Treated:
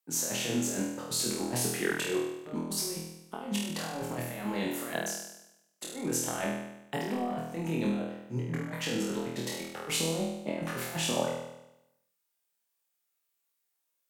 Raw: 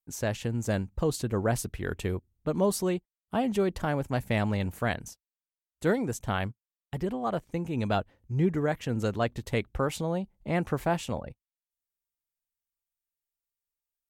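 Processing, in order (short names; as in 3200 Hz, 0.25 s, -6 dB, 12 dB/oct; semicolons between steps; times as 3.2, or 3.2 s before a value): Bessel high-pass 260 Hz, order 8; negative-ratio compressor -36 dBFS, ratio -0.5; flutter echo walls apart 4.2 m, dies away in 0.88 s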